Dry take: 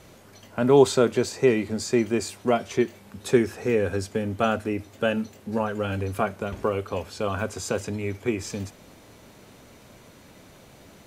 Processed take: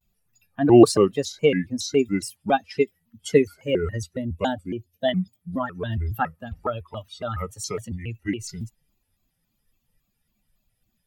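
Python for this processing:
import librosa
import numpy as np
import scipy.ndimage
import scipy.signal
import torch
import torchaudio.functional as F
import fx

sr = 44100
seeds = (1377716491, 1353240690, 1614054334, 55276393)

y = fx.bin_expand(x, sr, power=2.0)
y = fx.band_shelf(y, sr, hz=1400.0, db=-10.5, octaves=1.7, at=(4.25, 5.09))
y = fx.vibrato_shape(y, sr, shape='square', rate_hz=3.6, depth_cents=250.0)
y = F.gain(torch.from_numpy(y), 5.5).numpy()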